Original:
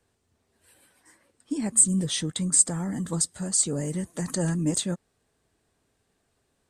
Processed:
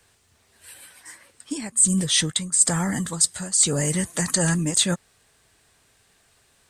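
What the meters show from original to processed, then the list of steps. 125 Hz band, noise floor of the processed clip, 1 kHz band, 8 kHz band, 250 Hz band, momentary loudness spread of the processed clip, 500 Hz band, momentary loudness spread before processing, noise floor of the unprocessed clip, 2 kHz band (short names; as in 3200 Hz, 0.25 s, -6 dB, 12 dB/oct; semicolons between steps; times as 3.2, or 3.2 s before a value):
+3.5 dB, -62 dBFS, +8.0 dB, +3.5 dB, +2.0 dB, 8 LU, +4.0 dB, 12 LU, -74 dBFS, +12.0 dB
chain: EQ curve 130 Hz 0 dB, 270 Hz -5 dB, 2100 Hz +8 dB; reverse; compressor 5:1, threshold -25 dBFS, peak gain reduction 17.5 dB; reverse; gain +7.5 dB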